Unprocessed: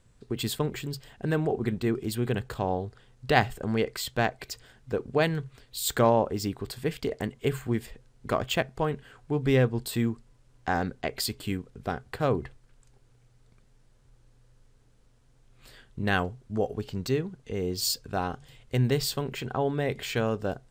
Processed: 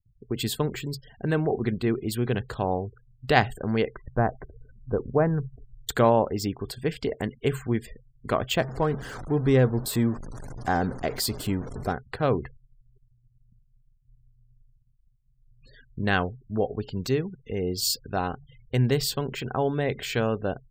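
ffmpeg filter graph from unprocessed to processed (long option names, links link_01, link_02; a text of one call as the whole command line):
ffmpeg -i in.wav -filter_complex "[0:a]asettb=1/sr,asplit=3[link_01][link_02][link_03];[link_01]atrim=end=3.944[link_04];[link_02]atrim=start=3.94:end=5.89,asetpts=PTS-STARTPTS,afade=type=in:duration=0.004:curve=qsin,afade=type=out:start_time=1.946:duration=0.004:curve=qsin,lowpass=frequency=1400:width=0.5412,lowpass=frequency=1400:width=1.3066,lowshelf=frequency=85:gain=11[link_05];[link_03]atrim=start=5.886[link_06];[link_04][link_05]acrossfade=duration=0.004:curve1=hsin:curve2=qsin[link_07];[link_07][link_06]acrossfade=duration=0.004:curve1=qsin:curve2=hsin,asettb=1/sr,asplit=3[link_08][link_09][link_10];[link_08]atrim=end=8.574[link_11];[link_09]atrim=start=8.57:end=11.93,asetpts=PTS-STARTPTS,afade=type=in:duration=0.004:curve=qsin,afade=type=out:start_time=3.356:duration=0.004:curve=qsin,aeval=exprs='val(0)+0.5*0.0211*sgn(val(0))':channel_layout=same,equalizer=frequency=2700:width_type=o:width=1.1:gain=-6.5[link_12];[link_10]atrim=start=11.926[link_13];[link_11][link_12]acrossfade=duration=0.004:curve1=hsin:curve2=qsin[link_14];[link_14][link_13]acrossfade=duration=0.004:curve1=qsin:curve2=hsin,afftfilt=real='re*gte(hypot(re,im),0.00501)':imag='im*gte(hypot(re,im),0.00501)':win_size=1024:overlap=0.75,agate=range=-33dB:threshold=-57dB:ratio=3:detection=peak,volume=2dB" out.wav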